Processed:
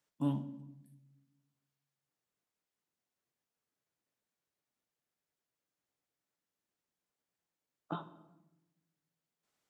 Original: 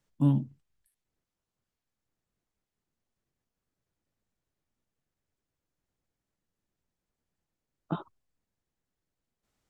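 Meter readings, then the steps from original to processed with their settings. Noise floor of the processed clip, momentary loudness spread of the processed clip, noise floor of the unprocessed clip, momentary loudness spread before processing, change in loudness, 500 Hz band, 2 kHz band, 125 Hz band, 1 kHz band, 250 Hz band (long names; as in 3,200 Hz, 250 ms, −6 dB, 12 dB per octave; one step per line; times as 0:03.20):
below −85 dBFS, 20 LU, below −85 dBFS, 13 LU, −9.5 dB, −4.0 dB, −2.0 dB, −11.5 dB, −2.5 dB, −7.5 dB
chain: high-pass filter 480 Hz 6 dB per octave
rectangular room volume 410 cubic metres, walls mixed, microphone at 0.39 metres
level −2 dB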